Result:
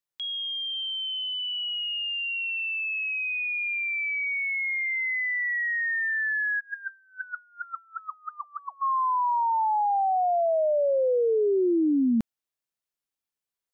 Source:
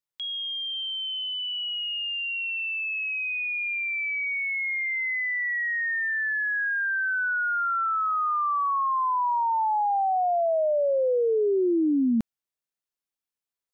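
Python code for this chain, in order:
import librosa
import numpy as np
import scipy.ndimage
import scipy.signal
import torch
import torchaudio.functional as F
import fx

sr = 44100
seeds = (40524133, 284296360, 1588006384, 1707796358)

y = fx.wah_lfo(x, sr, hz=fx.line((6.59, 1.8), (8.81, 4.0)), low_hz=510.0, high_hz=2000.0, q=20.0, at=(6.59, 8.81), fade=0.02)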